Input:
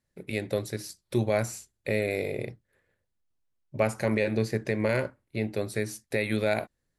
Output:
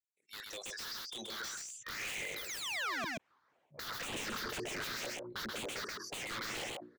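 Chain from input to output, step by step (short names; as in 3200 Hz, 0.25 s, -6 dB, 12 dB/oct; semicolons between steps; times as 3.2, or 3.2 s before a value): spectral noise reduction 24 dB; notches 60/120/180/240/300/360 Hz; harmonic-percussive split harmonic -11 dB; in parallel at -2 dB: level quantiser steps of 14 dB; on the sum: band-pass sweep 7900 Hz -> 470 Hz, 0.33–4.32; painted sound fall, 2.36–3.05, 200–4100 Hz -45 dBFS; wrapped overs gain 44.5 dB; phaser stages 6, 2 Hz, lowest notch 630–1500 Hz; overdrive pedal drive 17 dB, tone 3100 Hz, clips at -40.5 dBFS; on a send: echo 0.13 s -5 dB; on the sum: sustainer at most 26 dB/s; gain +9 dB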